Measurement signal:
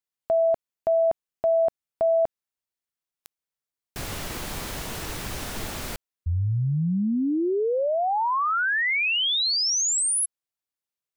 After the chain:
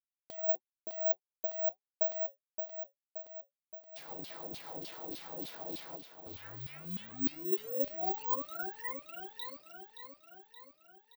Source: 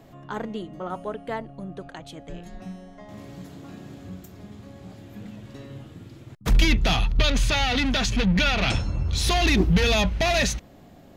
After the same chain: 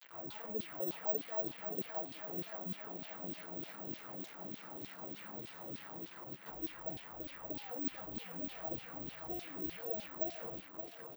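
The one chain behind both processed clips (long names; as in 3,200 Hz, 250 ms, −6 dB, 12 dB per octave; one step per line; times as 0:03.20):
treble cut that deepens with the level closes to 650 Hz, closed at −19.5 dBFS
flat-topped bell 1,800 Hz −13 dB
comb filter 6.1 ms, depth 85%
dynamic equaliser 190 Hz, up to −4 dB, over −33 dBFS, Q 2.2
downward compressor, threshold −22 dBFS
brickwall limiter −26.5 dBFS
bit reduction 7 bits
flanger 1.5 Hz, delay 4.4 ms, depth 9.5 ms, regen −51%
auto-filter band-pass saw down 3.3 Hz 260–4,000 Hz
repeating echo 573 ms, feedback 57%, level −9 dB
bad sample-rate conversion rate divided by 2×, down filtered, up zero stuff
level +3.5 dB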